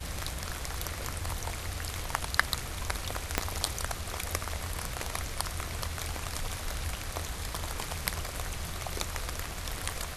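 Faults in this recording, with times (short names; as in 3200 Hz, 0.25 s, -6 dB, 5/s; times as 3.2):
3.38 pop -8 dBFS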